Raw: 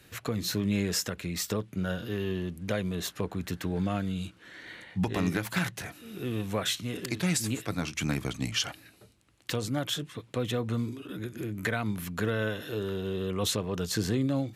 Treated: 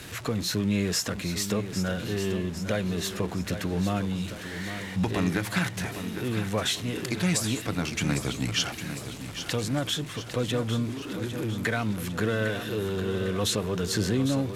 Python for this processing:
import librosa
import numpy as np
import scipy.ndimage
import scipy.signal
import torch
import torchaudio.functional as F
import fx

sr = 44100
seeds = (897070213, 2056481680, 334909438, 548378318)

y = x + 0.5 * 10.0 ** (-39.0 / 20.0) * np.sign(x)
y = scipy.signal.sosfilt(scipy.signal.butter(2, 12000.0, 'lowpass', fs=sr, output='sos'), y)
y = fx.echo_feedback(y, sr, ms=804, feedback_pct=51, wet_db=-10)
y = F.gain(torch.from_numpy(y), 1.5).numpy()